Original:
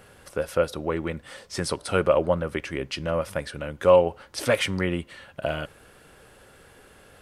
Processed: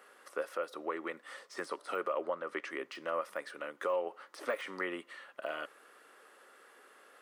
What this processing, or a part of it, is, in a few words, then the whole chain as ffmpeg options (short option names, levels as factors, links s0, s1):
laptop speaker: -filter_complex "[0:a]deesser=0.95,asettb=1/sr,asplit=3[s0][s1][s2];[s0]atrim=end=2.244[s3];[s1]atrim=start=2.24:end=2.7,asetpts=PTS-STARTPTS,afade=t=in:d=0.004:c=qsin,afade=t=out:st=0.456:d=0.004:c=qsin,lowpass=8000[s4];[s2]atrim=start=2.696[s5];[s3][s4]acrossfade=d=0.004:c1=hsin:c2=qsin[s6];[s6][s5]acrossfade=d=0.004:c1=qsin:c2=hsin,highpass=f=300:w=0.5412,highpass=f=300:w=1.3066,equalizer=f=1200:t=o:w=0.43:g=10,equalizer=f=1900:t=o:w=0.24:g=6.5,alimiter=limit=0.188:level=0:latency=1:release=213,volume=0.355"